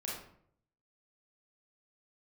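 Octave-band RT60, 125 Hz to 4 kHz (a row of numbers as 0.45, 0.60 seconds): 0.90, 0.75, 0.70, 0.60, 0.50, 0.40 seconds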